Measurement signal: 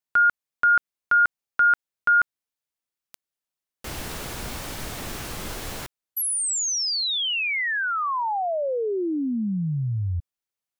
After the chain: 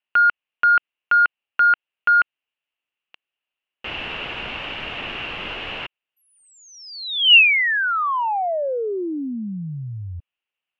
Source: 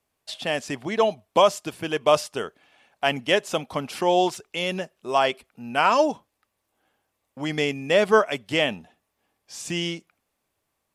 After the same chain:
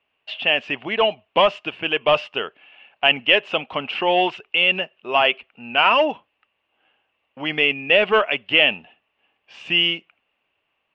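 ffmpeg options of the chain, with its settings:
ffmpeg -i in.wav -filter_complex "[0:a]asplit=2[link_01][link_02];[link_02]highpass=frequency=720:poles=1,volume=12dB,asoftclip=type=tanh:threshold=-4.5dB[link_03];[link_01][link_03]amix=inputs=2:normalize=0,lowpass=frequency=1200:poles=1,volume=-6dB,lowpass=frequency=2800:width_type=q:width=8.8,volume=-1dB" out.wav

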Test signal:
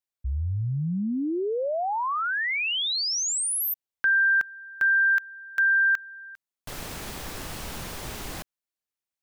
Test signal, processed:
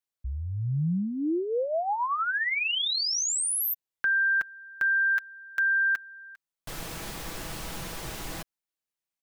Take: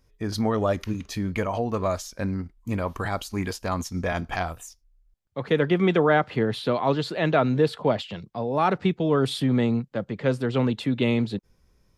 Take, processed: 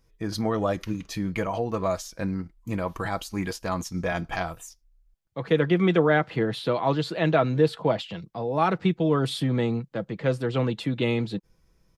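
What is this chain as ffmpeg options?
ffmpeg -i in.wav -af "aecho=1:1:6.1:0.38,volume=-1.5dB" out.wav

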